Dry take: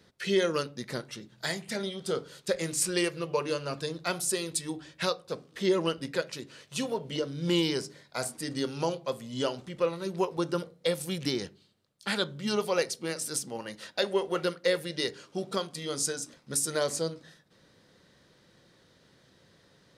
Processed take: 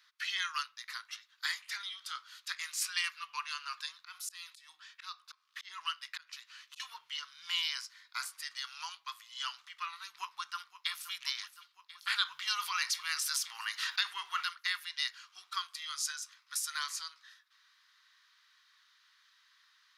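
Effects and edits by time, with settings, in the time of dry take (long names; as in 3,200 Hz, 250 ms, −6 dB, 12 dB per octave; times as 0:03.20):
0:03.97–0:06.80: volume swells 282 ms
0:10.07–0:11.11: delay throw 520 ms, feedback 75%, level −15 dB
0:12.18–0:14.47: envelope flattener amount 50%
whole clip: elliptic high-pass filter 1,100 Hz, stop band 50 dB; parametric band 8,500 Hz −10 dB 0.46 octaves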